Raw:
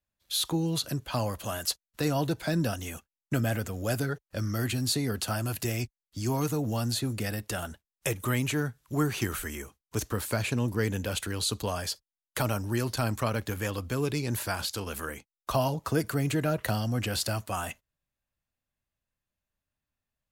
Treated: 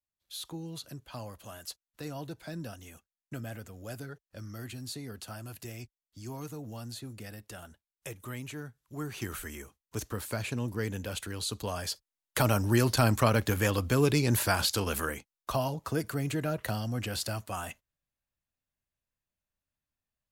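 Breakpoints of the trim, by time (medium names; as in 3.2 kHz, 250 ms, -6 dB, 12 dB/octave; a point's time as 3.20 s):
8.93 s -12 dB
9.34 s -5 dB
11.50 s -5 dB
12.66 s +4.5 dB
14.95 s +4.5 dB
15.62 s -4 dB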